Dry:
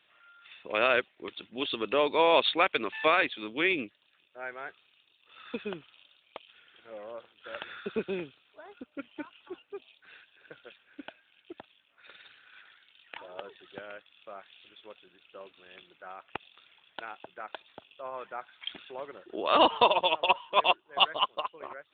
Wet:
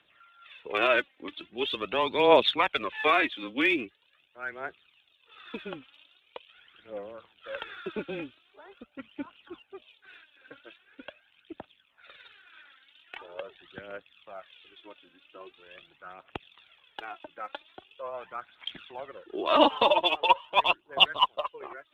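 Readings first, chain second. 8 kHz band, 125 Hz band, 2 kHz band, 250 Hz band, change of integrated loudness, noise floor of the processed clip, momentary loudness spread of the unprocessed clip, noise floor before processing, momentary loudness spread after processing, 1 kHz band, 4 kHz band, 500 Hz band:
can't be measured, +1.0 dB, +1.5 dB, +3.0 dB, +1.5 dB, −68 dBFS, 22 LU, −68 dBFS, 22 LU, +1.0 dB, +2.5 dB, +1.5 dB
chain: frequency shifter −15 Hz
phase shifter 0.43 Hz, delay 3.9 ms, feedback 57%
MP3 80 kbit/s 32,000 Hz

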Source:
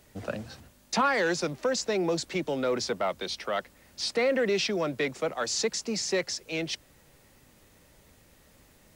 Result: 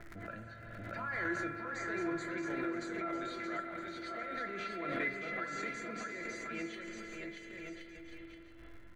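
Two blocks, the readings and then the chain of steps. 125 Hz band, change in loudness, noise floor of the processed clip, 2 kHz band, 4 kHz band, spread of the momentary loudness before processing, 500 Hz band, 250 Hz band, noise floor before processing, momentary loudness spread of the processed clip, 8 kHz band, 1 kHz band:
−9.0 dB, −10.5 dB, −52 dBFS, −5.0 dB, −19.0 dB, 10 LU, −14.0 dB, −7.0 dB, −60 dBFS, 13 LU, −20.0 dB, −8.0 dB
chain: reversed playback
downward compressor 10 to 1, threshold −35 dBFS, peak gain reduction 15 dB
reversed playback
low-pass that shuts in the quiet parts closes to 1,400 Hz, open at −33.5 dBFS
Butterworth band-reject 5,300 Hz, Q 4.8
tuned comb filter 340 Hz, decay 0.21 s, harmonics all, mix 90%
bouncing-ball delay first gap 630 ms, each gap 0.7×, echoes 5
spring reverb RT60 2.6 s, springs 45 ms, chirp 35 ms, DRR 4 dB
surface crackle 160 per second −57 dBFS
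flat-topped bell 1,700 Hz +12.5 dB 1 octave
shaped tremolo saw down 1.6 Hz, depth 50%
spectral tilt −2 dB per octave
background raised ahead of every attack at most 26 dB per second
level +4.5 dB

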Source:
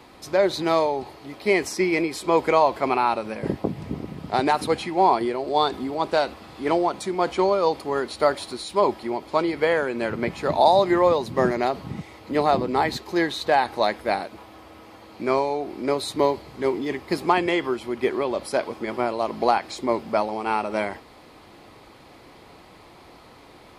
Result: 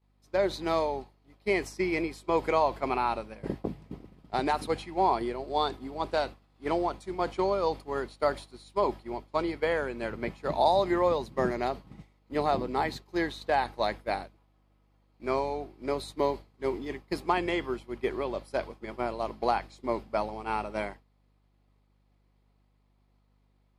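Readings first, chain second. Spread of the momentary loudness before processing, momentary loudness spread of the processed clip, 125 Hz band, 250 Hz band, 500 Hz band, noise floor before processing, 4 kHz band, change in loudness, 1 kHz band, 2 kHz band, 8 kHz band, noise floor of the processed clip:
9 LU, 9 LU, −6.0 dB, −7.5 dB, −7.0 dB, −49 dBFS, −8.5 dB, −7.0 dB, −7.0 dB, −7.5 dB, below −10 dB, −68 dBFS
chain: mains hum 50 Hz, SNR 14 dB
downward expander −23 dBFS
level −7 dB

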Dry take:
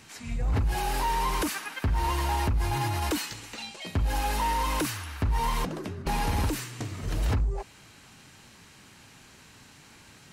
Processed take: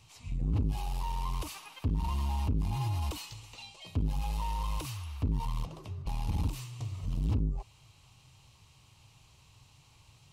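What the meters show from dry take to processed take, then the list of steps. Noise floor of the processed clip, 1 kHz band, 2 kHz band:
−61 dBFS, −11.5 dB, −16.0 dB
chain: drawn EQ curve 130 Hz 0 dB, 210 Hz −19 dB, 1,100 Hz −7 dB, 1,600 Hz −24 dB, 2,700 Hz −7 dB, 9,700 Hz −11 dB
saturating transformer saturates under 140 Hz

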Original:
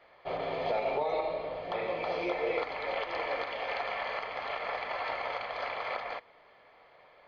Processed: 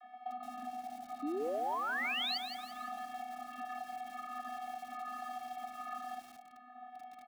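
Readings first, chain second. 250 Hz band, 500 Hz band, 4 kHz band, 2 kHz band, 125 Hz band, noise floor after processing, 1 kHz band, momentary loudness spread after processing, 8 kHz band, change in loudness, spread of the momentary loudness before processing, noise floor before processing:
−1.0 dB, −12.0 dB, +1.0 dB, −5.5 dB, below −15 dB, −56 dBFS, −3.5 dB, 15 LU, can't be measured, −6.0 dB, 5 LU, −60 dBFS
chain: rippled gain that drifts along the octave scale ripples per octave 1.8, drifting −1.3 Hz, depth 9 dB
dynamic equaliser 840 Hz, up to −3 dB, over −44 dBFS, Q 1.1
channel vocoder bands 32, square 248 Hz
high-shelf EQ 2,200 Hz −10.5 dB
delay with a low-pass on its return 67 ms, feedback 50%, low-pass 2,800 Hz, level −19.5 dB
downward compressor 16 to 1, threshold −46 dBFS, peak gain reduction 20.5 dB
comb filter 1.6 ms, depth 51%
sound drawn into the spectrogram rise, 0:01.22–0:02.38, 270–4,800 Hz −41 dBFS
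Butterworth high-pass 170 Hz 96 dB per octave
feedback echo at a low word length 170 ms, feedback 55%, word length 9 bits, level −8 dB
level +4.5 dB

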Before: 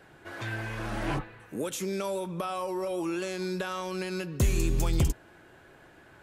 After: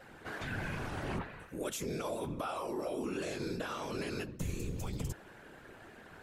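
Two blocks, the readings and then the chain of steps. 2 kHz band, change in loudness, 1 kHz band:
−5.0 dB, −7.0 dB, −5.5 dB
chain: reversed playback
downward compressor 5 to 1, threshold −36 dBFS, peak gain reduction 14.5 dB
reversed playback
random phases in short frames
level +1 dB

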